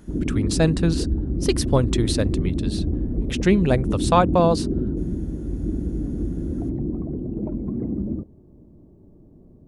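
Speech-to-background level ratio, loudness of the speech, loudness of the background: 4.0 dB, -22.5 LUFS, -26.5 LUFS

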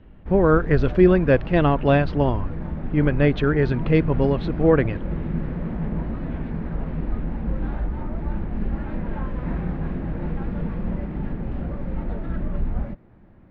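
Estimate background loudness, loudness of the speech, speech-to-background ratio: -30.0 LUFS, -20.0 LUFS, 10.0 dB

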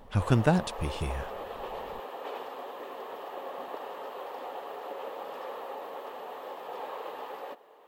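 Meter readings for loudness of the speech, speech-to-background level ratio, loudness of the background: -28.5 LUFS, 11.5 dB, -40.0 LUFS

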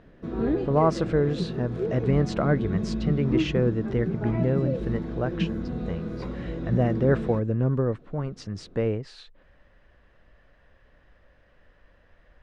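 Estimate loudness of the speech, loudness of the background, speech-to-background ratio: -27.0 LUFS, -30.5 LUFS, 3.5 dB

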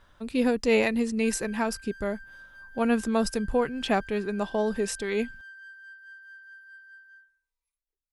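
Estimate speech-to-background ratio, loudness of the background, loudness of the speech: 19.0 dB, -46.5 LUFS, -27.5 LUFS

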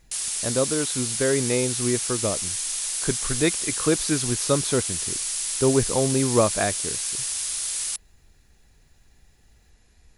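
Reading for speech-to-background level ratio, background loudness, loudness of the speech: 0.0 dB, -25.5 LUFS, -25.5 LUFS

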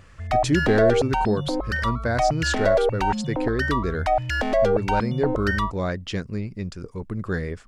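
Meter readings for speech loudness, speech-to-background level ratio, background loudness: -27.0 LUFS, -3.0 dB, -24.0 LUFS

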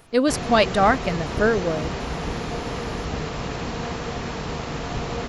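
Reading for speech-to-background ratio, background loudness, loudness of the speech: 8.0 dB, -29.5 LUFS, -21.5 LUFS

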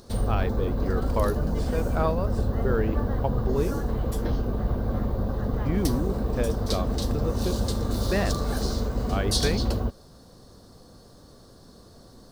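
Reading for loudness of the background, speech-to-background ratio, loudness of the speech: -28.0 LUFS, -3.5 dB, -31.5 LUFS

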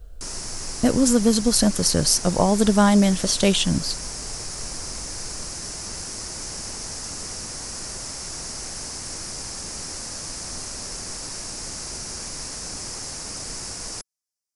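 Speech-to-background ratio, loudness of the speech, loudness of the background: 12.0 dB, -19.0 LUFS, -31.0 LUFS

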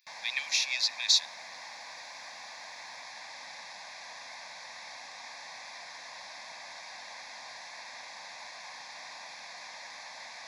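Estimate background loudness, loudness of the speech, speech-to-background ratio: -43.5 LUFS, -27.0 LUFS, 16.5 dB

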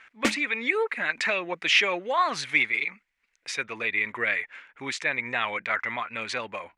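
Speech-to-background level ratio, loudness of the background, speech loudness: 4.0 dB, -30.0 LUFS, -26.0 LUFS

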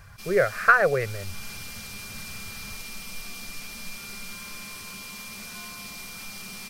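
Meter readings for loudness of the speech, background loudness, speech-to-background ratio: -22.0 LUFS, -37.5 LUFS, 15.5 dB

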